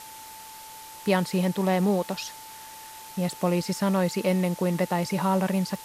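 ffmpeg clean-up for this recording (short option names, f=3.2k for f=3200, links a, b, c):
-af "adeclick=t=4,bandreject=f=880:w=30,afftdn=nr=28:nf=-43"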